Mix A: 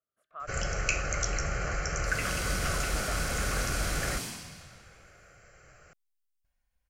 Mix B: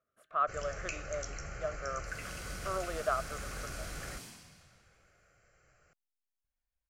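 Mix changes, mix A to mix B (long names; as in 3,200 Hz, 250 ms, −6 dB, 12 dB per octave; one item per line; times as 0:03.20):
speech +11.0 dB
first sound −11.5 dB
second sound −11.5 dB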